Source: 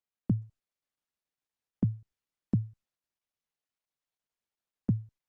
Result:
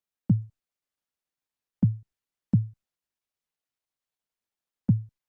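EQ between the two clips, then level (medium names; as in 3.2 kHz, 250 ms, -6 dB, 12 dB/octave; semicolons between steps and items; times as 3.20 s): dynamic bell 150 Hz, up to +7 dB, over -39 dBFS, Q 0.75; 0.0 dB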